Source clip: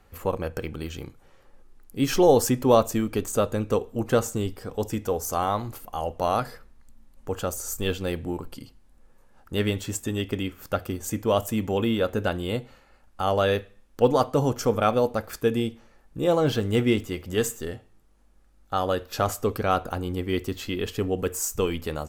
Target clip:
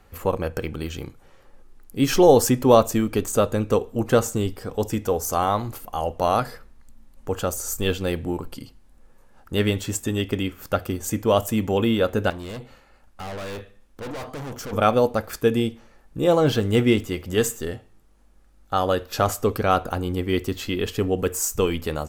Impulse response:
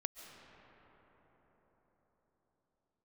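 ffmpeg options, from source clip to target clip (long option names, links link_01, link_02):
-filter_complex "[0:a]asettb=1/sr,asplit=3[link_01][link_02][link_03];[link_01]atrim=end=12.304[link_04];[link_02]atrim=start=12.3:end=14.73,asetpts=PTS-STARTPTS,afade=type=in:duration=0.004:curve=qsin,afade=type=out:start_time=2.426:duration=0.004:curve=qsin,aeval=exprs='(tanh(56.2*val(0)+0.35)-tanh(0.35))/56.2':channel_layout=same[link_05];[link_03]atrim=start=14.726[link_06];[link_04][link_05]acrossfade=duration=0.004:curve1=hsin:curve2=qsin[link_07];[link_07][link_06]acrossfade=duration=0.004:curve1=qsin:curve2=hsin,volume=3.5dB"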